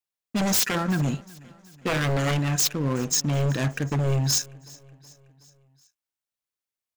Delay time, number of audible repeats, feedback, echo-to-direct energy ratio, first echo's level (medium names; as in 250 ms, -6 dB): 372 ms, 3, 57%, -22.0 dB, -23.5 dB